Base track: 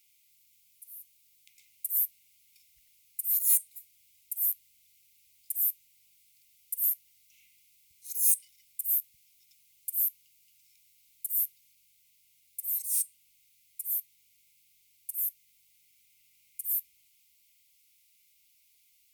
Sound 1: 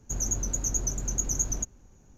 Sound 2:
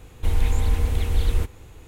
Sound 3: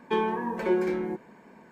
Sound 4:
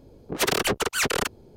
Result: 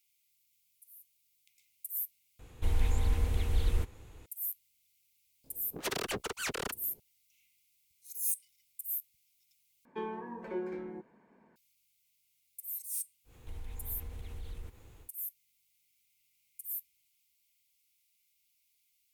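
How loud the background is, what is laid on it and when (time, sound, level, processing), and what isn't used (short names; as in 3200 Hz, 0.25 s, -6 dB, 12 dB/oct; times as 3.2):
base track -8.5 dB
2.39 replace with 2 -8 dB
5.44 add 4 -12 dB
9.85 replace with 3 -12 dB + high shelf 3300 Hz -10 dB
13.24 add 2 -11 dB, fades 0.10 s + compressor 2.5:1, threshold -33 dBFS
not used: 1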